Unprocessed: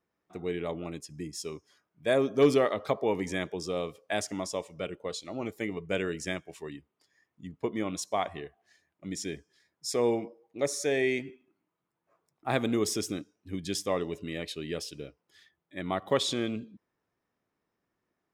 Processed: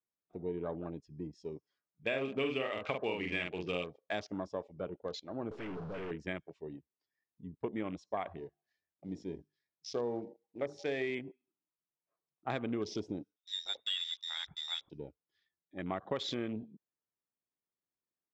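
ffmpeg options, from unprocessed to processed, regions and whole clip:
ffmpeg -i in.wav -filter_complex "[0:a]asettb=1/sr,asplit=3[link_01][link_02][link_03];[link_01]atrim=end=2.074[link_04];[link_02]atrim=start=2.07:end=3.84,asetpts=PTS-STARTPTS,afade=type=in:duration=0.004:curve=qsin,afade=type=out:start_time=1.766:duration=0.004:curve=qsin,lowpass=frequency=2700:width_type=q:width=9.7,asplit=2[link_05][link_06];[link_06]adelay=45,volume=-3.5dB[link_07];[link_05][link_07]amix=inputs=2:normalize=0,atrim=end_sample=78057[link_08];[link_03]atrim=start=3.836[link_09];[link_04][link_08]acrossfade=duration=0.004:curve1=hsin:curve2=qsin[link_10];[link_10][link_09]acrossfade=duration=0.004:curve1=qsin:curve2=hsin,asettb=1/sr,asplit=3[link_11][link_12][link_13];[link_11]atrim=end=5.514[link_14];[link_12]atrim=start=5.51:end=6.11,asetpts=PTS-STARTPTS,afade=type=in:duration=0.004:curve=qsin,afade=type=out:start_time=0.596:duration=0.004:curve=qsin,aeval=exprs='val(0)+0.5*0.0237*sgn(val(0))':channel_layout=same,aeval=exprs='(tanh(63.1*val(0)+0.2)-tanh(0.2))/63.1':channel_layout=same[link_15];[link_13]atrim=start=6.106[link_16];[link_14][link_15]acrossfade=duration=0.004:curve1=hsin:curve2=qsin[link_17];[link_17][link_16]acrossfade=duration=0.004:curve1=qsin:curve2=hsin,asettb=1/sr,asplit=3[link_18][link_19][link_20];[link_18]atrim=end=8.374[link_21];[link_19]atrim=start=8.37:end=11.1,asetpts=PTS-STARTPTS,afade=type=in:duration=0.004:curve=qsin,afade=type=out:start_time=2.726:duration=0.004:curve=qsin,highpass=41,bandreject=frequency=50:width_type=h:width=6,bandreject=frequency=100:width_type=h:width=6,bandreject=frequency=150:width_type=h:width=6,bandreject=frequency=200:width_type=h:width=6,bandreject=frequency=250:width_type=h:width=6,bandreject=frequency=300:width_type=h:width=6,bandreject=frequency=350:width_type=h:width=6,bandreject=frequency=400:width_type=h:width=6,bandreject=frequency=450:width_type=h:width=6,acrusher=bits=5:mode=log:mix=0:aa=0.000001[link_22];[link_20]atrim=start=11.096[link_23];[link_21][link_22]acrossfade=duration=0.004:curve1=hsin:curve2=qsin[link_24];[link_24][link_23]acrossfade=duration=0.004:curve1=qsin:curve2=hsin,asettb=1/sr,asplit=3[link_25][link_26][link_27];[link_25]atrim=end=13.364[link_28];[link_26]atrim=start=13.36:end=14.9,asetpts=PTS-STARTPTS,afade=type=in:duration=0.004:curve=qsin,afade=type=out:start_time=1.536:duration=0.004:curve=qsin,lowpass=frequency=3300:width_type=q:width=0.5098,lowpass=frequency=3300:width_type=q:width=0.6013,lowpass=frequency=3300:width_type=q:width=0.9,lowpass=frequency=3300:width_type=q:width=2.563,afreqshift=-3900,asoftclip=type=hard:threshold=-20.5dB[link_29];[link_27]atrim=start=14.896[link_30];[link_28][link_29]acrossfade=duration=0.004:curve1=hsin:curve2=qsin[link_31];[link_31][link_30]acrossfade=duration=0.004:curve1=qsin:curve2=hsin,lowpass=frequency=5300:width=0.5412,lowpass=frequency=5300:width=1.3066,afwtdn=0.00794,acompressor=threshold=-28dB:ratio=6,volume=-3.5dB" out.wav

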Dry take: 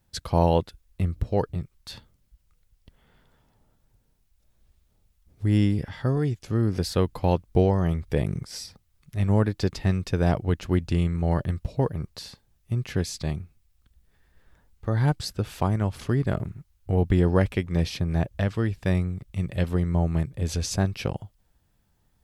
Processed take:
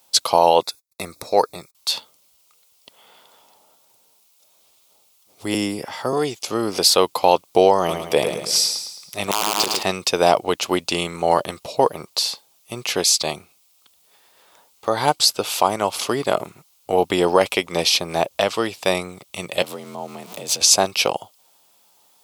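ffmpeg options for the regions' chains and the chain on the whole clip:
ffmpeg -i in.wav -filter_complex "[0:a]asettb=1/sr,asplit=3[link_01][link_02][link_03];[link_01]atrim=end=0.614[link_04];[link_02]atrim=start=0.61:end=1.75,asetpts=PTS-STARTPTS,afade=type=in:duration=0.004:curve=qsin,afade=type=out:start_time=1.136:duration=0.004:curve=qsin,agate=range=-31dB:threshold=-55dB:ratio=16:release=100:detection=peak,asuperstop=centerf=3000:order=4:qfactor=2.9,tiltshelf=frequency=1400:gain=-3[link_05];[link_03]atrim=start=1.746[link_06];[link_04][link_05]acrossfade=duration=0.004:curve1=hsin:curve2=qsin[link_07];[link_07][link_06]acrossfade=duration=0.004:curve1=qsin:curve2=hsin,asettb=1/sr,asplit=3[link_08][link_09][link_10];[link_08]atrim=end=5.544[link_11];[link_09]atrim=start=5.54:end=6.13,asetpts=PTS-STARTPTS,afade=type=in:duration=0.004:curve=qsin,afade=type=out:start_time=0.586:duration=0.004:curve=qsin,equalizer=frequency=3500:width_type=o:width=0.81:gain=-9,acrossover=split=340|3000[link_12][link_13][link_14];[link_13]acompressor=threshold=-38dB:ratio=1.5:attack=3.2:release=140:knee=2.83:detection=peak[link_15];[link_12][link_15][link_14]amix=inputs=3:normalize=0[link_16];[link_10]atrim=start=6.126[link_17];[link_11][link_16]acrossfade=duration=0.004:curve1=hsin:curve2=qsin[link_18];[link_18][link_17]acrossfade=duration=0.004:curve1=qsin:curve2=hsin,asettb=1/sr,asplit=3[link_19][link_20][link_21];[link_19]atrim=end=7.784[link_22];[link_20]atrim=start=7.78:end=9.83,asetpts=PTS-STARTPTS,afade=type=in:duration=0.004:curve=qsin,afade=type=out:start_time=2.046:duration=0.004:curve=qsin,aeval=exprs='(mod(3.55*val(0)+1,2)-1)/3.55':channel_layout=same,aecho=1:1:108|216|324|432|540:0.447|0.205|0.0945|0.0435|0.02,atrim=end_sample=90405[link_23];[link_21]atrim=start=9.826[link_24];[link_22][link_23]acrossfade=duration=0.004:curve1=hsin:curve2=qsin[link_25];[link_25][link_24]acrossfade=duration=0.004:curve1=qsin:curve2=hsin,asettb=1/sr,asplit=3[link_26][link_27][link_28];[link_26]atrim=end=19.624[link_29];[link_27]atrim=start=19.62:end=20.61,asetpts=PTS-STARTPTS,afade=type=in:duration=0.004:curve=qsin,afade=type=out:start_time=0.986:duration=0.004:curve=qsin,aeval=exprs='val(0)+0.5*0.0106*sgn(val(0))':channel_layout=same,acompressor=threshold=-34dB:ratio=4:attack=3.2:release=140:knee=1:detection=peak,afreqshift=47[link_30];[link_28]atrim=start=20.606[link_31];[link_29][link_30]acrossfade=duration=0.004:curve1=hsin:curve2=qsin[link_32];[link_32][link_31]acrossfade=duration=0.004:curve1=qsin:curve2=hsin,highpass=800,equalizer=frequency=1700:width=2.1:gain=-15,alimiter=level_in=21dB:limit=-1dB:release=50:level=0:latency=1,volume=-1dB" out.wav

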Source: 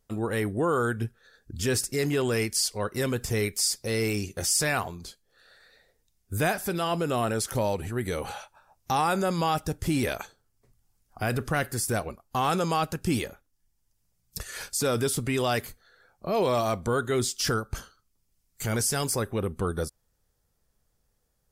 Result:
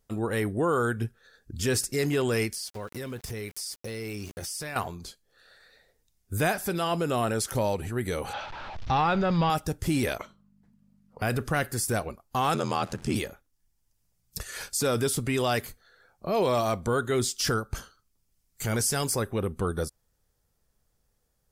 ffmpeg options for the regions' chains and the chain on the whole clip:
ffmpeg -i in.wav -filter_complex "[0:a]asettb=1/sr,asplit=3[link_01][link_02][link_03];[link_01]atrim=end=2.544[link_04];[link_02]atrim=start=2.54:end=4.76,asetpts=PTS-STARTPTS,afade=type=in:duration=0.004:curve=qsin,afade=type=out:start_time=2.216:duration=0.004:curve=qsin,equalizer=frequency=7200:width=4.4:gain=-6.5,aeval=exprs='val(0)*gte(abs(val(0)),0.00841)':channel_layout=same,acompressor=threshold=-33dB:ratio=5:attack=3.2:release=140:knee=1:detection=peak[link_05];[link_03]atrim=start=4.756[link_06];[link_04][link_05]acrossfade=duration=0.004:curve1=hsin:curve2=qsin[link_07];[link_07][link_06]acrossfade=duration=0.004:curve1=qsin:curve2=hsin,asettb=1/sr,asplit=3[link_08][link_09][link_10];[link_08]atrim=end=8.334[link_11];[link_09]atrim=start=8.33:end=9.5,asetpts=PTS-STARTPTS,afade=type=in:duration=0.004:curve=qsin,afade=type=out:start_time=1.166:duration=0.004:curve=qsin,aeval=exprs='val(0)+0.5*0.02*sgn(val(0))':channel_layout=same,lowpass=frequency=4200:width=0.5412,lowpass=frequency=4200:width=1.3066,asubboost=boost=9.5:cutoff=140[link_12];[link_10]atrim=start=9.496[link_13];[link_11][link_12]acrossfade=duration=0.004:curve1=hsin:curve2=qsin[link_14];[link_14][link_13]acrossfade=duration=0.004:curve1=qsin:curve2=hsin,asettb=1/sr,asplit=3[link_15][link_16][link_17];[link_15]atrim=end=10.184[link_18];[link_16]atrim=start=10.18:end=11.22,asetpts=PTS-STARTPTS,afade=type=in:duration=0.004:curve=qsin,afade=type=out:start_time=1.036:duration=0.004:curve=qsin,bass=frequency=250:gain=-4,treble=frequency=4000:gain=-12,aeval=exprs='val(0)+0.000794*(sin(2*PI*50*n/s)+sin(2*PI*2*50*n/s)/2+sin(2*PI*3*50*n/s)/3+sin(2*PI*4*50*n/s)/4+sin(2*PI*5*50*n/s)/5)':channel_layout=same,afreqshift=-250[link_19];[link_17]atrim=start=11.216[link_20];[link_18][link_19]acrossfade=duration=0.004:curve1=hsin:curve2=qsin[link_21];[link_21][link_20]acrossfade=duration=0.004:curve1=qsin:curve2=hsin,asettb=1/sr,asplit=3[link_22][link_23][link_24];[link_22]atrim=end=12.544[link_25];[link_23]atrim=start=12.54:end=13.16,asetpts=PTS-STARTPTS,afade=type=in:duration=0.004:curve=qsin,afade=type=out:start_time=0.616:duration=0.004:curve=qsin,aeval=exprs='val(0)+0.5*0.00891*sgn(val(0))':channel_layout=same,lowpass=8800,aeval=exprs='val(0)*sin(2*PI*41*n/s)':channel_layout=same[link_26];[link_24]atrim=start=13.156[link_27];[link_25][link_26]acrossfade=duration=0.004:curve1=hsin:curve2=qsin[link_28];[link_28][link_27]acrossfade=duration=0.004:curve1=qsin:curve2=hsin" out.wav

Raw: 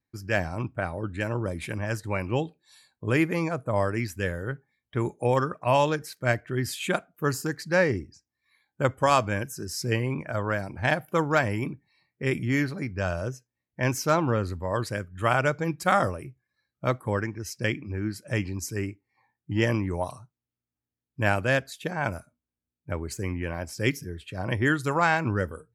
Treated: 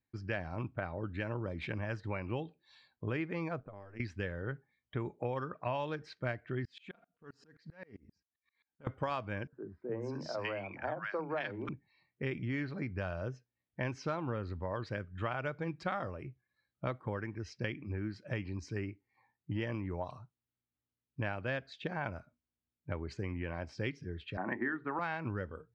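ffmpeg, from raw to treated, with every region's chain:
ffmpeg -i in.wav -filter_complex "[0:a]asettb=1/sr,asplit=3[link_01][link_02][link_03];[link_01]atrim=end=3.604[link_04];[link_02]atrim=start=3.6:end=4,asetpts=PTS-STARTPTS,afade=type=in:duration=0.004:curve=qsin,afade=type=out:start_time=0.396:duration=0.004:curve=qsin,acompressor=threshold=-42dB:ratio=3:attack=3.2:release=140:knee=1:detection=peak,tremolo=f=100:d=0.857[link_05];[link_03]atrim=start=3.996[link_06];[link_04][link_05]acrossfade=duration=0.004:curve1=hsin:curve2=qsin[link_07];[link_07][link_06]acrossfade=duration=0.004:curve1=qsin:curve2=hsin,asettb=1/sr,asplit=3[link_08][link_09][link_10];[link_08]atrim=end=6.654[link_11];[link_09]atrim=start=6.65:end=8.87,asetpts=PTS-STARTPTS,afade=type=in:duration=0.004:curve=qsin,afade=type=out:start_time=2.216:duration=0.004:curve=qsin,aecho=1:1:4.3:0.4,atrim=end_sample=97902,acompressor=threshold=-35dB:ratio=16:attack=3.2:release=140:knee=1:detection=peak,aeval=exprs='val(0)*pow(10,-30*if(lt(mod(-7.6*n/s,1),2*abs(-7.6)/1000),1-mod(-7.6*n/s,1)/(2*abs(-7.6)/1000),(mod(-7.6*n/s,1)-2*abs(-7.6)/1000)/(1-2*abs(-7.6)/1000))/20)':channel_layout=same[link_12];[link_10]atrim=start=8.866[link_13];[link_11][link_12]acrossfade=duration=0.004:curve1=hsin:curve2=qsin[link_14];[link_14][link_13]acrossfade=duration=0.004:curve1=qsin:curve2=hsin,asettb=1/sr,asplit=3[link_15][link_16][link_17];[link_15]atrim=end=9.474[link_18];[link_16]atrim=start=9.47:end=11.69,asetpts=PTS-STARTPTS,afade=type=in:duration=0.004:curve=qsin,afade=type=out:start_time=2.216:duration=0.004:curve=qsin,acrossover=split=230 7200:gain=0.251 1 0.141[link_19][link_20][link_21];[link_19][link_20][link_21]amix=inputs=3:normalize=0,acrossover=split=240|1200[link_22][link_23][link_24];[link_22]adelay=50[link_25];[link_24]adelay=530[link_26];[link_25][link_23][link_26]amix=inputs=3:normalize=0,atrim=end_sample=97902[link_27];[link_17]atrim=start=11.686[link_28];[link_18][link_27]acrossfade=duration=0.004:curve1=hsin:curve2=qsin[link_29];[link_29][link_28]acrossfade=duration=0.004:curve1=qsin:curve2=hsin,asettb=1/sr,asplit=3[link_30][link_31][link_32];[link_30]atrim=end=24.374[link_33];[link_31]atrim=start=24.37:end=24.99,asetpts=PTS-STARTPTS,afade=type=in:duration=0.004:curve=qsin,afade=type=out:start_time=0.616:duration=0.004:curve=qsin,highpass=frequency=180:width=0.5412,highpass=frequency=180:width=1.3066,equalizer=frequency=240:width_type=q:width=4:gain=7,equalizer=frequency=350:width_type=q:width=4:gain=6,equalizer=frequency=510:width_type=q:width=4:gain=-7,equalizer=frequency=830:width_type=q:width=4:gain=6,equalizer=frequency=1200:width_type=q:width=4:gain=3,equalizer=frequency=1800:width_type=q:width=4:gain=8,lowpass=frequency=2000:width=0.5412,lowpass=frequency=2000:width=1.3066,bandreject=frequency=50:width_type=h:width=6,bandreject=frequency=100:width_type=h:width=6,bandreject=frequency=150:width_type=h:width=6,bandreject=frequency=200:width_type=h:width=6,bandreject=frequency=250:width_type=h:width=6,bandreject=frequency=300:width_type=h:width=6,bandreject=frequency=350:width_type=h:width=6,bandreject=frequency=400:width_type=h:width=6,bandreject=frequency=450:width_type=h:width=6[link_34];[link_32]atrim=start=24.986[link_35];[link_33][link_34]acrossfade=duration=0.004:curve1=hsin:curve2=qsin[link_36];[link_36][link_35]acrossfade=duration=0.004:curve1=qsin:curve2=hsin,lowpass=frequency=4200:width=0.5412,lowpass=frequency=4200:width=1.3066,acompressor=threshold=-30dB:ratio=5,volume=-3.5dB" out.wav

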